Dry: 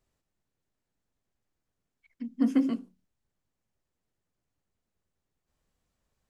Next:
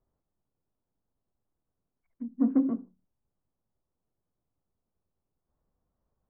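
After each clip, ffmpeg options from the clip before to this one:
ffmpeg -i in.wav -af "lowpass=frequency=1200:width=0.5412,lowpass=frequency=1200:width=1.3066" out.wav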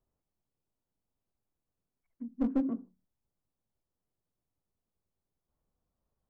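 ffmpeg -i in.wav -af "aeval=exprs='clip(val(0),-1,0.075)':channel_layout=same,volume=-4dB" out.wav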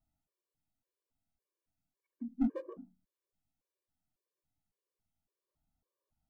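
ffmpeg -i in.wav -af "afftfilt=real='re*gt(sin(2*PI*1.8*pts/sr)*(1-2*mod(floor(b*sr/1024/310),2)),0)':imag='im*gt(sin(2*PI*1.8*pts/sr)*(1-2*mod(floor(b*sr/1024/310),2)),0)':win_size=1024:overlap=0.75" out.wav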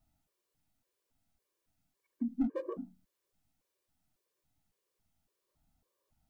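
ffmpeg -i in.wav -af "acompressor=threshold=-36dB:ratio=10,volume=8dB" out.wav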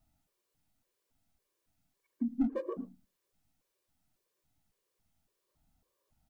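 ffmpeg -i in.wav -af "aecho=1:1:112:0.0891,volume=1.5dB" out.wav

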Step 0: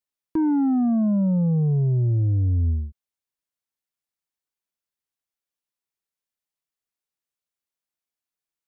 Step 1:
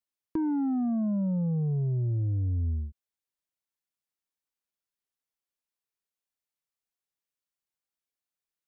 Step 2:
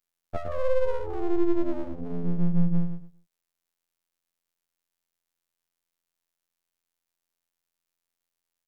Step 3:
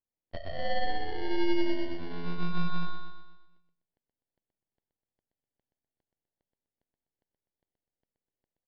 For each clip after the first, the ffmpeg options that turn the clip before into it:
ffmpeg -i in.wav -af "acompressor=threshold=-23dB:ratio=6,volume=-3.5dB" out.wav
ffmpeg -i in.wav -af "aecho=1:1:112|224|336:0.596|0.149|0.0372,afftfilt=real='hypot(re,im)*cos(PI*b)':imag='0':win_size=2048:overlap=0.75,aeval=exprs='abs(val(0))':channel_layout=same,volume=8dB" out.wav
ffmpeg -i in.wav -filter_complex "[0:a]acrusher=samples=35:mix=1:aa=0.000001,asplit=2[link_01][link_02];[link_02]aecho=0:1:125|250|375|500|625|750:0.562|0.264|0.124|0.0584|0.0274|0.0129[link_03];[link_01][link_03]amix=inputs=2:normalize=0,aresample=11025,aresample=44100,volume=-7dB" out.wav

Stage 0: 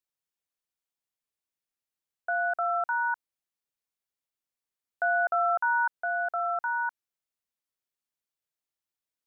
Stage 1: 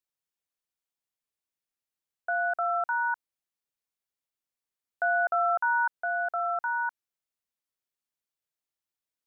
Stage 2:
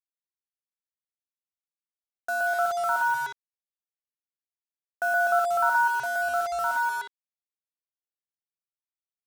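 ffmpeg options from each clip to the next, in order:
ffmpeg -i in.wav -af anull out.wav
ffmpeg -i in.wav -af "aecho=1:1:122.4|183.7:1|0.282,acrusher=bits=5:mix=0:aa=0.5" out.wav

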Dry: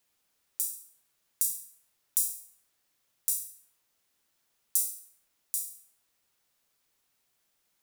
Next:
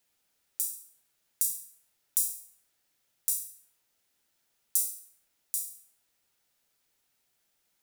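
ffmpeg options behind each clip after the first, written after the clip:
ffmpeg -i in.wav -af "bandreject=frequency=1100:width=9.1" out.wav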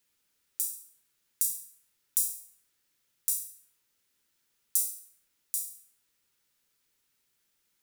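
ffmpeg -i in.wav -af "equalizer=frequency=700:width=3.5:gain=-11.5" out.wav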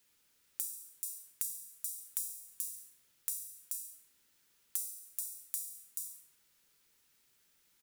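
ffmpeg -i in.wav -filter_complex "[0:a]aecho=1:1:432:0.355,acrossover=split=180[link_01][link_02];[link_02]acompressor=threshold=-39dB:ratio=4[link_03];[link_01][link_03]amix=inputs=2:normalize=0,volume=3.5dB" out.wav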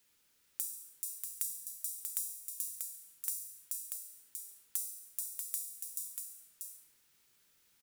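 ffmpeg -i in.wav -af "aecho=1:1:638:0.562" out.wav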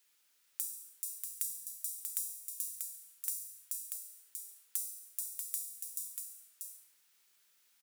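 ffmpeg -i in.wav -af "highpass=frequency=790:poles=1" out.wav

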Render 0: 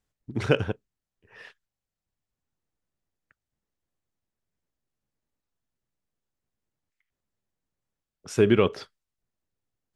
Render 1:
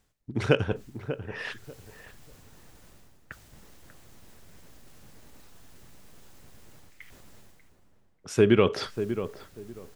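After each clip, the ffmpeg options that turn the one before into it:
ffmpeg -i in.wav -filter_complex "[0:a]areverse,acompressor=mode=upward:threshold=-25dB:ratio=2.5,areverse,asplit=2[link_01][link_02];[link_02]adelay=591,lowpass=frequency=1200:poles=1,volume=-10dB,asplit=2[link_03][link_04];[link_04]adelay=591,lowpass=frequency=1200:poles=1,volume=0.23,asplit=2[link_05][link_06];[link_06]adelay=591,lowpass=frequency=1200:poles=1,volume=0.23[link_07];[link_01][link_03][link_05][link_07]amix=inputs=4:normalize=0" out.wav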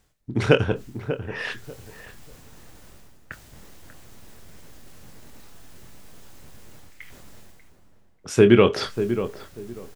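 ffmpeg -i in.wav -filter_complex "[0:a]asplit=2[link_01][link_02];[link_02]adelay=25,volume=-10dB[link_03];[link_01][link_03]amix=inputs=2:normalize=0,volume=5dB" out.wav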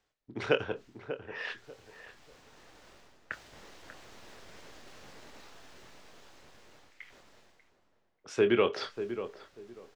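ffmpeg -i in.wav -filter_complex "[0:a]dynaudnorm=framelen=280:gausssize=17:maxgain=10.5dB,acrossover=split=320 6200:gain=0.224 1 0.126[link_01][link_02][link_03];[link_01][link_02][link_03]amix=inputs=3:normalize=0,volume=-8dB" out.wav

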